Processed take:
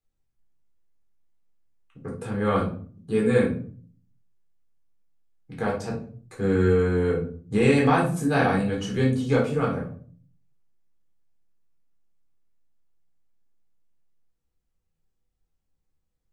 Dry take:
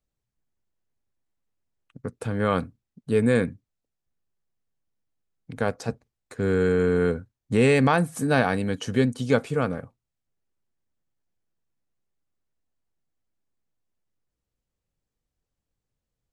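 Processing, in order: shoebox room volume 380 m³, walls furnished, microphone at 3.9 m; gain -7 dB

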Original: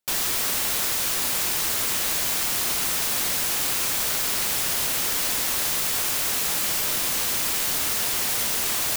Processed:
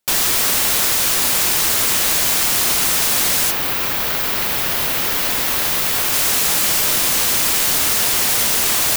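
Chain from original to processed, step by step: 3.5–6.12 bell 8000 Hz -14.5 dB -> -4.5 dB 1.5 oct; gain +8 dB

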